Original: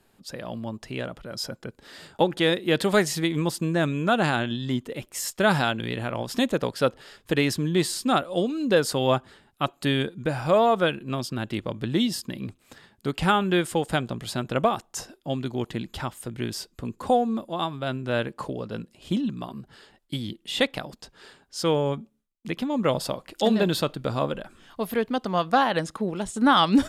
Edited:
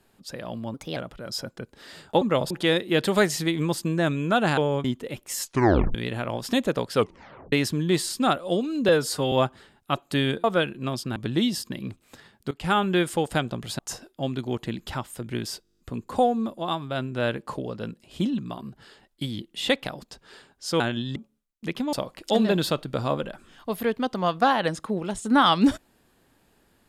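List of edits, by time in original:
0.74–1.02 speed 125%
4.34–4.7 swap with 21.71–21.98
5.27 tape stop 0.53 s
6.8 tape stop 0.58 s
8.74–9.03 stretch 1.5×
10.15–10.7 cut
11.42–11.74 cut
13.09–13.36 fade in, from -19.5 dB
14.37–14.86 cut
16.7 stutter 0.02 s, 9 plays
22.75–23.04 move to 2.27

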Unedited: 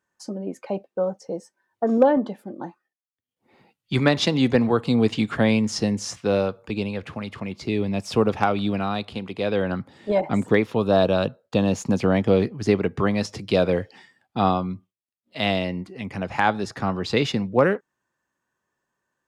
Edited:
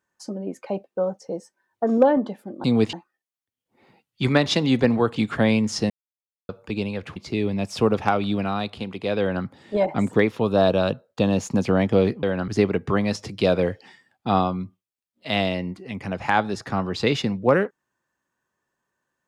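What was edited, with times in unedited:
4.87–5.16 move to 2.64
5.9–6.49 mute
7.16–7.51 cut
9.55–9.8 copy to 12.58

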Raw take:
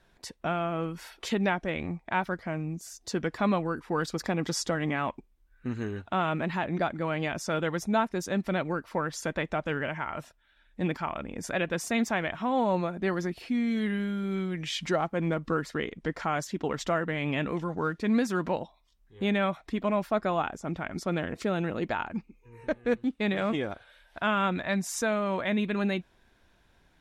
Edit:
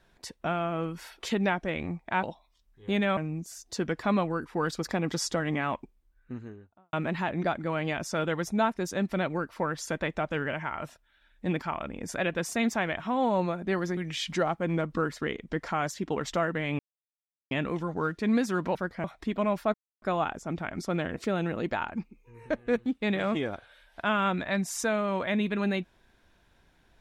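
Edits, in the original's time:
2.23–2.52 swap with 18.56–19.5
5.14–6.28 studio fade out
13.32–14.5 cut
17.32 insert silence 0.72 s
20.2 insert silence 0.28 s

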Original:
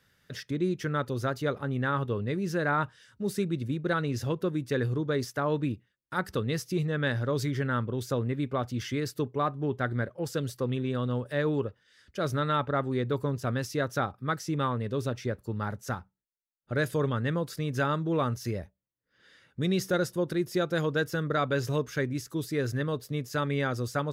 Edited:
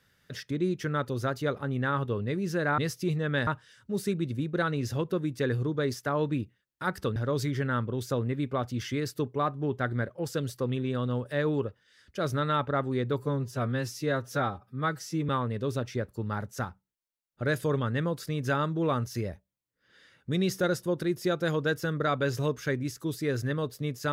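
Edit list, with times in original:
6.47–7.16 move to 2.78
13.19–14.59 stretch 1.5×

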